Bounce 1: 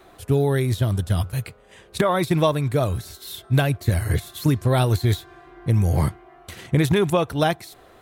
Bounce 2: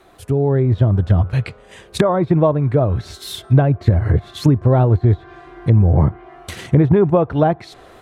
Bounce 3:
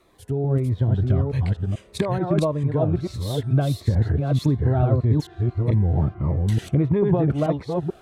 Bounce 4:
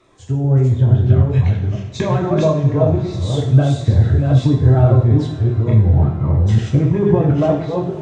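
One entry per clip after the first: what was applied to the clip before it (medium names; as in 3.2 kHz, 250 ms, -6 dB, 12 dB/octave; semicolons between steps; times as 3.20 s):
low-pass that closes with the level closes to 900 Hz, closed at -17 dBFS; level rider gain up to 10 dB
chunks repeated in reverse 439 ms, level -2 dB; Shepard-style phaser falling 1.6 Hz; trim -7 dB
knee-point frequency compression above 3.4 kHz 1.5:1; two-slope reverb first 0.6 s, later 4.8 s, from -20 dB, DRR -1 dB; trim +2.5 dB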